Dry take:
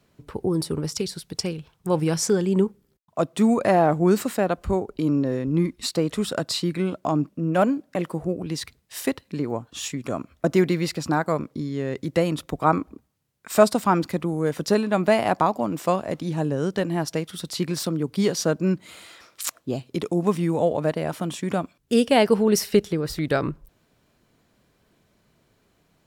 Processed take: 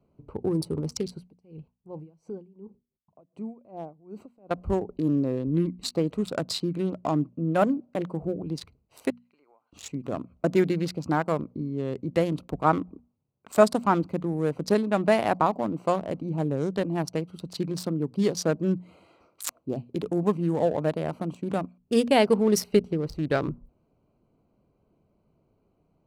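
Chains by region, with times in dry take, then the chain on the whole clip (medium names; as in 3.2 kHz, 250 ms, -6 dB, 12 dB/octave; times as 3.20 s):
1.22–4.51 s: peaking EQ 1.3 kHz -5.5 dB 0.29 oct + compression 2.5:1, threshold -35 dBFS + logarithmic tremolo 2.7 Hz, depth 23 dB
9.10–9.73 s: high-pass 1.3 kHz + peaking EQ 1.9 kHz +6.5 dB 0.69 oct + compression 16:1, threshold -50 dBFS
whole clip: local Wiener filter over 25 samples; hum notches 60/120/180/240 Hz; trim -2 dB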